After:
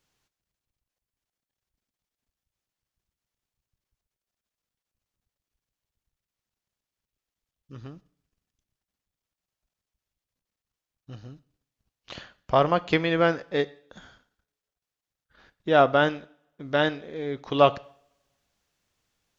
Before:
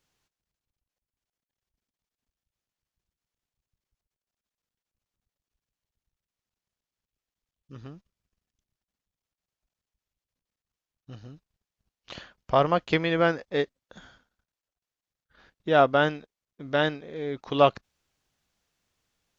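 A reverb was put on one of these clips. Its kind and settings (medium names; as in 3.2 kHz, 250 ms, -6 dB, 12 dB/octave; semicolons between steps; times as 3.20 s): two-slope reverb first 0.55 s, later 1.6 s, from -27 dB, DRR 16 dB; trim +1 dB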